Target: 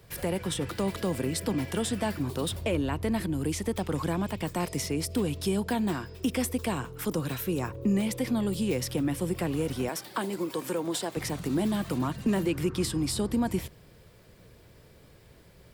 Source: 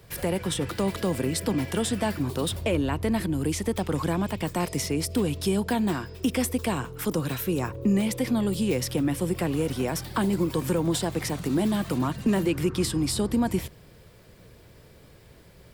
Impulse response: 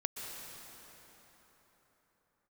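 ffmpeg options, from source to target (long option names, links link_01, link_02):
-filter_complex "[0:a]asettb=1/sr,asplit=3[link_01][link_02][link_03];[link_01]atrim=end=9.894[link_04];[link_02]atrim=start=9.89:end=11.17,asetpts=PTS-STARTPTS,afade=type=in:duration=0.004:curve=qsin,afade=type=out:start_time=1.276:duration=0.004:curve=qsin,highpass=300[link_05];[link_03]atrim=start=11.166[link_06];[link_04][link_05]acrossfade=duration=0.004:curve1=hsin:curve2=qsin[link_07];[link_07][link_06]acrossfade=duration=0.004:curve1=qsin:curve2=hsin,volume=-3dB"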